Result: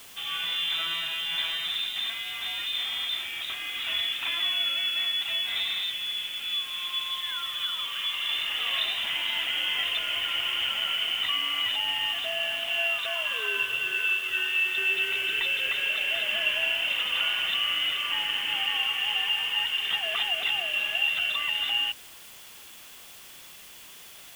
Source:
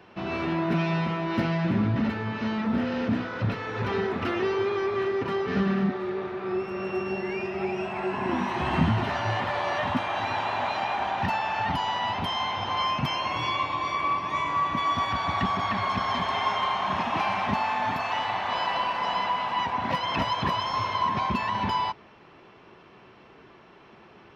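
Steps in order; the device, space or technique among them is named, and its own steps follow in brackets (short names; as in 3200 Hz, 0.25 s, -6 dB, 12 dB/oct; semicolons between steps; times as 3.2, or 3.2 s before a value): scrambled radio voice (BPF 310–3000 Hz; inverted band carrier 3800 Hz; white noise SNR 19 dB)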